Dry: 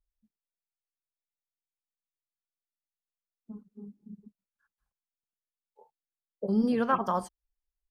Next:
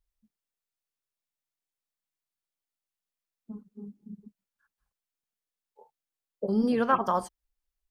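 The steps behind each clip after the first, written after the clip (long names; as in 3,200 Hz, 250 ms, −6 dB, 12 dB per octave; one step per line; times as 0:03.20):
dynamic equaliser 190 Hz, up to −4 dB, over −40 dBFS
level +2.5 dB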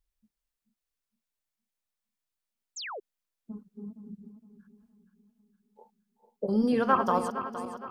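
feedback delay that plays each chunk backwards 232 ms, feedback 65%, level −9 dB
bucket-brigade delay 472 ms, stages 4,096, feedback 61%, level −21.5 dB
sound drawn into the spectrogram fall, 0:02.76–0:03.00, 360–7,900 Hz −38 dBFS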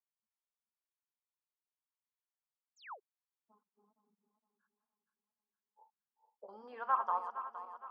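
four-pole ladder band-pass 1,100 Hz, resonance 50%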